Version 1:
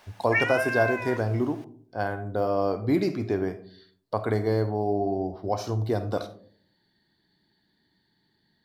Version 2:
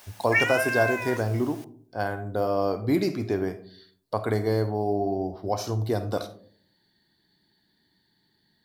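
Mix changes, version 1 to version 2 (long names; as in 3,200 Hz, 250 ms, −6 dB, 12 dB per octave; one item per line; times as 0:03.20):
background: add high-shelf EQ 4,700 Hz +8 dB
master: add high-shelf EQ 6,000 Hz +9.5 dB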